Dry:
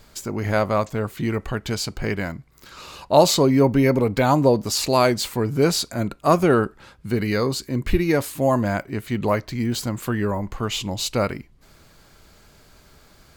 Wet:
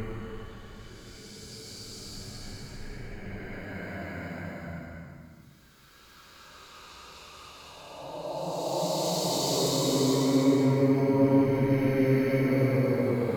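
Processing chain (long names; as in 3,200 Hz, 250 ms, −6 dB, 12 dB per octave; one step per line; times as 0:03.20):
spectrum averaged block by block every 50 ms
volume swells 263 ms
extreme stretch with random phases 5.1×, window 0.50 s, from 0:01.44
level −6 dB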